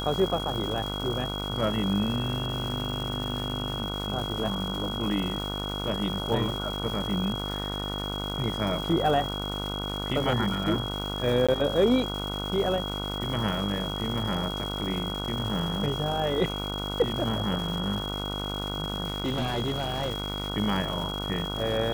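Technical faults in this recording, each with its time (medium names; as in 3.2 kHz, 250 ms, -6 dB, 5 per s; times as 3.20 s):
buzz 50 Hz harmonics 30 -34 dBFS
crackle 530 per s -34 dBFS
whine 3.3 kHz -34 dBFS
11.47–11.49 s: dropout 16 ms
19.06–20.48 s: clipped -23.5 dBFS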